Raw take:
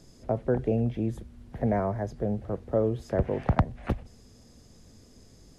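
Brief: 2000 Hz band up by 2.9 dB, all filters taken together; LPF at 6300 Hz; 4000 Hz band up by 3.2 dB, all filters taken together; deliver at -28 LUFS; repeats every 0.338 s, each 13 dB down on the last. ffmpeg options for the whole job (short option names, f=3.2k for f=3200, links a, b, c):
-af "lowpass=6.3k,equalizer=f=2k:t=o:g=3,equalizer=f=4k:t=o:g=4,aecho=1:1:338|676|1014:0.224|0.0493|0.0108,volume=1dB"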